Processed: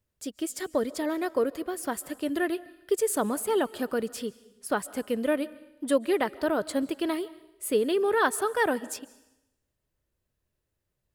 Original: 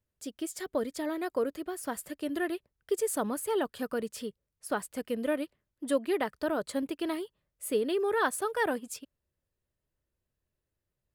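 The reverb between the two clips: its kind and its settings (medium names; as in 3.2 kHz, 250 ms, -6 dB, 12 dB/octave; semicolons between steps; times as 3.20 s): algorithmic reverb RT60 0.89 s, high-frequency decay 1×, pre-delay 105 ms, DRR 19.5 dB; trim +4 dB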